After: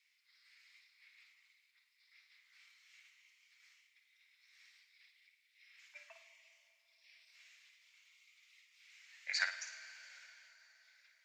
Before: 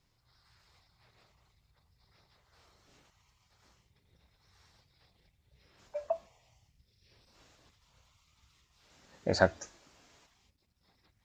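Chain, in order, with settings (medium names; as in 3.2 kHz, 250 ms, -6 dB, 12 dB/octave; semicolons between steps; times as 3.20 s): ladder high-pass 2 kHz, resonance 70%; on a send: flutter echo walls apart 9.3 m, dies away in 0.38 s; on the sum: plate-style reverb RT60 4.3 s, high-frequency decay 0.9×, DRR 11 dB; trim +9 dB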